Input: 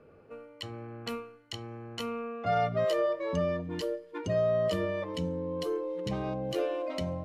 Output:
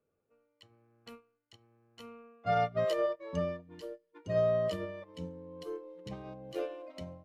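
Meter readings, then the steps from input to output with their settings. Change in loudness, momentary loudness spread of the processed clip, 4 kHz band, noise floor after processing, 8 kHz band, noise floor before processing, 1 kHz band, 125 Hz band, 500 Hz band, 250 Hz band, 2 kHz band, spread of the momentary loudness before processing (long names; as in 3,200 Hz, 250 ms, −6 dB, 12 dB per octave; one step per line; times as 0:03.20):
−2.5 dB, 22 LU, −8.0 dB, −81 dBFS, can't be measured, −56 dBFS, −2.5 dB, −5.5 dB, −3.5 dB, −7.5 dB, −4.5 dB, 14 LU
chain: expander for the loud parts 2.5 to 1, over −42 dBFS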